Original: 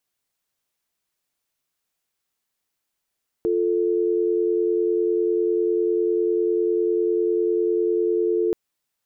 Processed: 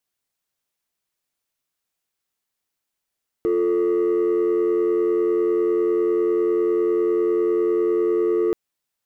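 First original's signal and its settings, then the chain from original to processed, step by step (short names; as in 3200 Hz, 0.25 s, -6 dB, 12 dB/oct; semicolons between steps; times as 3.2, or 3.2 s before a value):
call progress tone dial tone, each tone -21 dBFS 5.08 s
sample leveller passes 1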